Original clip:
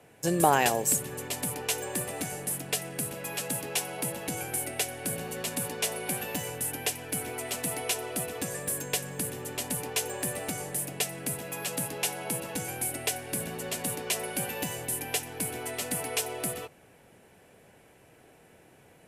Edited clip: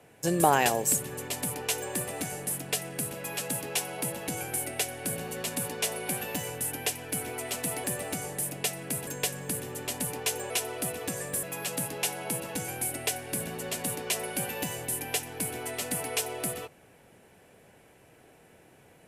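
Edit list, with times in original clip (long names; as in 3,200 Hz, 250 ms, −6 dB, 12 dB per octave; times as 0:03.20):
0:07.84–0:08.77: swap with 0:10.20–0:11.43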